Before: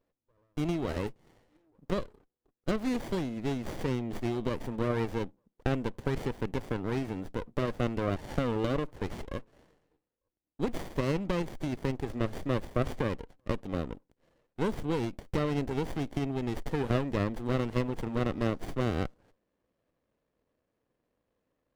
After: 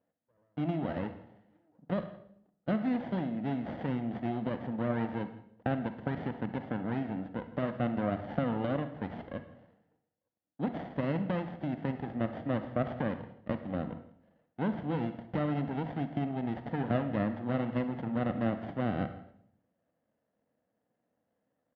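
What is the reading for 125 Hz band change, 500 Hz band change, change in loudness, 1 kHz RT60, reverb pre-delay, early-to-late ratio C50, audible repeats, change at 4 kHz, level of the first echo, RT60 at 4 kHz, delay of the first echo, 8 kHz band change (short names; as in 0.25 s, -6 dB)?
-2.0 dB, -3.0 dB, -1.5 dB, 0.60 s, 38 ms, 10.0 dB, 1, -8.0 dB, -21.0 dB, 0.60 s, 0.165 s, under -25 dB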